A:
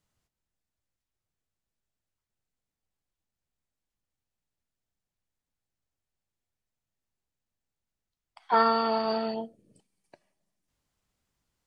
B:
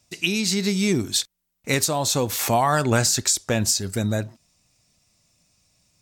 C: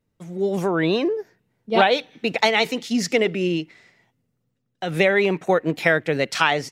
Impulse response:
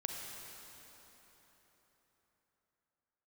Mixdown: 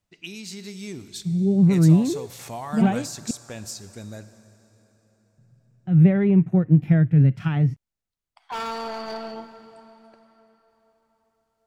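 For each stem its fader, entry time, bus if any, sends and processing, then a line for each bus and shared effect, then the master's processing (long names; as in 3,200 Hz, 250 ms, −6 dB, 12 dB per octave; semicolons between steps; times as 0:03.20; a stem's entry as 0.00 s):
−6.0 dB, 0.00 s, send −4.5 dB, hard clipping −25 dBFS, distortion −7 dB
−17.0 dB, 0.00 s, send −8 dB, low-pass that shuts in the quiet parts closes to 2,100 Hz, open at −20 dBFS
−1.0 dB, 1.05 s, muted 0:03.31–0:05.38, no send, octave-band graphic EQ 125/500/1,000/2,000/4,000/8,000 Hz +8/−9/−6/−5/−12/−6 dB; harmonic and percussive parts rebalanced percussive −10 dB; bass and treble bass +14 dB, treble −11 dB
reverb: on, RT60 4.2 s, pre-delay 32 ms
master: no processing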